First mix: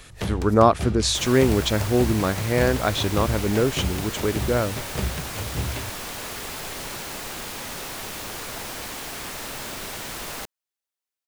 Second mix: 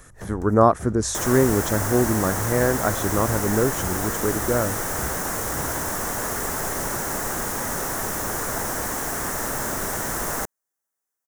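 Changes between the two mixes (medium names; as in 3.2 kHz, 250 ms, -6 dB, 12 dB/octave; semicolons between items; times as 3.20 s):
first sound -8.0 dB; second sound +8.0 dB; master: add high-order bell 3.3 kHz -14 dB 1.3 oct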